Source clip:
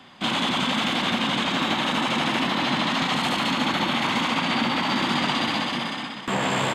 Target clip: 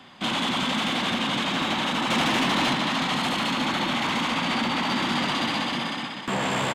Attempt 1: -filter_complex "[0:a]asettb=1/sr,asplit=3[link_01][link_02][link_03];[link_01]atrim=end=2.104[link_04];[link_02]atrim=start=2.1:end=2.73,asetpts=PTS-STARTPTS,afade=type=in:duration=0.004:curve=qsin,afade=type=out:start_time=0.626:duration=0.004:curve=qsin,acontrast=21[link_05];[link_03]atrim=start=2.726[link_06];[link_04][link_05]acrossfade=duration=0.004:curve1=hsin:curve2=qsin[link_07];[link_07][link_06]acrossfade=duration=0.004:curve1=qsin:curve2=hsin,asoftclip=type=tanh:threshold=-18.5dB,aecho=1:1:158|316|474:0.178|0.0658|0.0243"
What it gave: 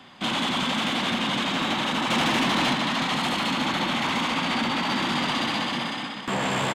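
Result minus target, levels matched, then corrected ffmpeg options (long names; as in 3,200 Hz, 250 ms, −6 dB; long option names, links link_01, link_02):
echo 89 ms early
-filter_complex "[0:a]asettb=1/sr,asplit=3[link_01][link_02][link_03];[link_01]atrim=end=2.104[link_04];[link_02]atrim=start=2.1:end=2.73,asetpts=PTS-STARTPTS,afade=type=in:duration=0.004:curve=qsin,afade=type=out:start_time=0.626:duration=0.004:curve=qsin,acontrast=21[link_05];[link_03]atrim=start=2.726[link_06];[link_04][link_05]acrossfade=duration=0.004:curve1=hsin:curve2=qsin[link_07];[link_07][link_06]acrossfade=duration=0.004:curve1=qsin:curve2=hsin,asoftclip=type=tanh:threshold=-18.5dB,aecho=1:1:247|494|741:0.178|0.0658|0.0243"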